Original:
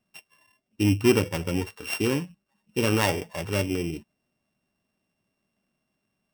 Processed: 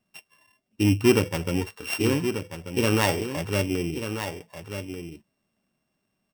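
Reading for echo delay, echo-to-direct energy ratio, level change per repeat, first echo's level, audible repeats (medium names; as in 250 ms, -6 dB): 1188 ms, -9.0 dB, no regular repeats, -9.0 dB, 1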